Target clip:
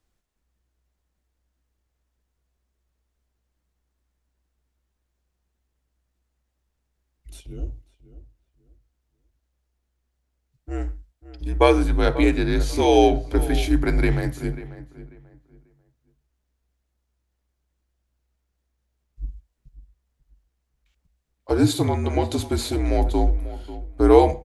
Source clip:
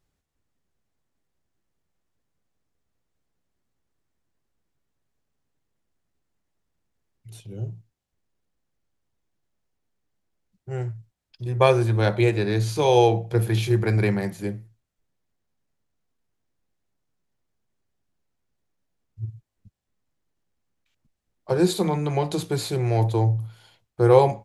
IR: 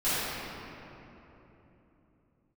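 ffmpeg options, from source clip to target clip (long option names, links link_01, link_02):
-filter_complex "[0:a]afreqshift=-62,asplit=2[link_01][link_02];[link_02]adelay=541,lowpass=frequency=2000:poles=1,volume=-15dB,asplit=2[link_03][link_04];[link_04]adelay=541,lowpass=frequency=2000:poles=1,volume=0.26,asplit=2[link_05][link_06];[link_06]adelay=541,lowpass=frequency=2000:poles=1,volume=0.26[link_07];[link_01][link_03][link_05][link_07]amix=inputs=4:normalize=0,asplit=2[link_08][link_09];[1:a]atrim=start_sample=2205,atrim=end_sample=6174[link_10];[link_09][link_10]afir=irnorm=-1:irlink=0,volume=-32dB[link_11];[link_08][link_11]amix=inputs=2:normalize=0,volume=1.5dB"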